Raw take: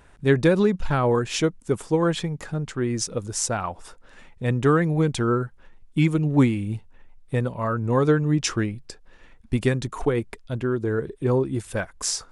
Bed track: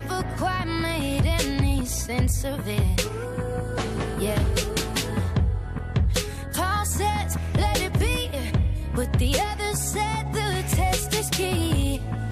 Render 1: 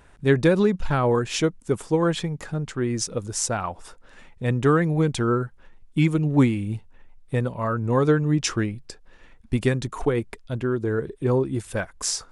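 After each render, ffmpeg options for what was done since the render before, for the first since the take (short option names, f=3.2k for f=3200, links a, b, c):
-af anull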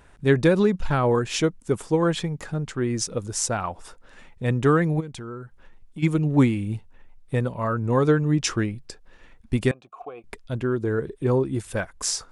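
-filter_complex "[0:a]asplit=3[a][b][c];[a]afade=t=out:st=4.99:d=0.02[d];[b]acompressor=threshold=-39dB:ratio=2.5:attack=3.2:release=140:knee=1:detection=peak,afade=t=in:st=4.99:d=0.02,afade=t=out:st=6.02:d=0.02[e];[c]afade=t=in:st=6.02:d=0.02[f];[d][e][f]amix=inputs=3:normalize=0,asettb=1/sr,asplit=3[g][h][i];[g]atrim=end=9.714[j];[h]atrim=start=9.71:end=10.24,asetpts=PTS-STARTPTS,afade=t=in:d=0.004:c=qsin,afade=t=out:st=0.526:d=0.004:c=qsin,asplit=3[k][l][m];[k]bandpass=f=730:t=q:w=8,volume=0dB[n];[l]bandpass=f=1.09k:t=q:w=8,volume=-6dB[o];[m]bandpass=f=2.44k:t=q:w=8,volume=-9dB[p];[n][o][p]amix=inputs=3:normalize=0[q];[i]atrim=start=10.236[r];[j][q]acrossfade=d=0.004:c1=hsin:c2=qsin[s];[s][r]acrossfade=d=0.004:c1=qsin:c2=hsin"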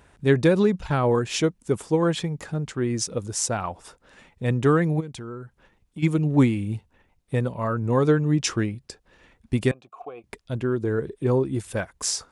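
-af "highpass=48,equalizer=f=1.4k:w=1.5:g=-2"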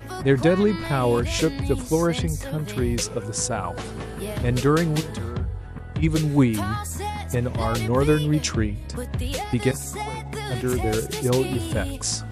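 -filter_complex "[1:a]volume=-5.5dB[a];[0:a][a]amix=inputs=2:normalize=0"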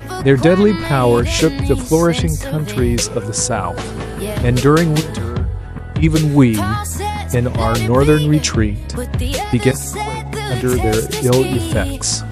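-af "volume=8dB,alimiter=limit=-1dB:level=0:latency=1"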